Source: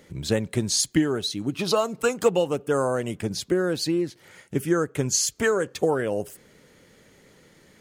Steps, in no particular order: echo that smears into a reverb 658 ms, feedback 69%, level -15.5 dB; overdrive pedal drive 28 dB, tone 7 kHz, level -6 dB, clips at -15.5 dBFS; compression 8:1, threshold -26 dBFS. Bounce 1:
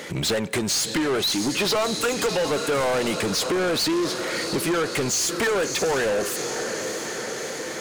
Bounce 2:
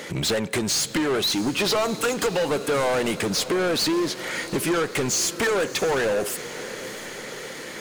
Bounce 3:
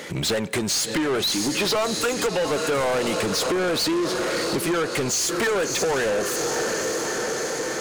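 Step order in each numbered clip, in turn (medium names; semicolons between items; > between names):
compression > echo that smears into a reverb > overdrive pedal; compression > overdrive pedal > echo that smears into a reverb; echo that smears into a reverb > compression > overdrive pedal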